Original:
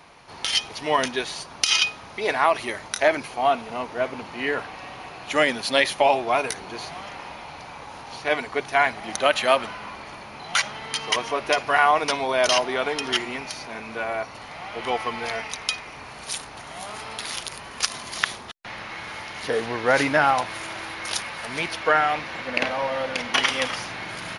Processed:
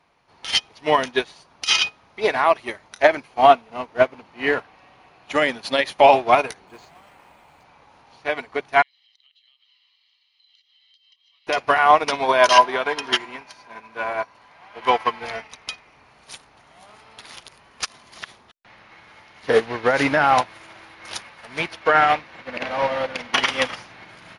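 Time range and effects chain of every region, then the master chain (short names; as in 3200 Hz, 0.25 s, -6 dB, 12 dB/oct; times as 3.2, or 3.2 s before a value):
6.67–7.64 careless resampling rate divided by 4×, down none, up hold + high shelf 8600 Hz -4 dB
8.82–11.47 Butterworth band-pass 3700 Hz, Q 2.3 + compressor 8:1, threshold -44 dBFS + comb 1 ms, depth 77%
12.22–15.2 low shelf 230 Hz -6 dB + small resonant body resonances 1000/1600 Hz, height 13 dB, ringing for 85 ms
whole clip: high shelf 7000 Hz -9 dB; maximiser +12.5 dB; upward expander 2.5:1, over -24 dBFS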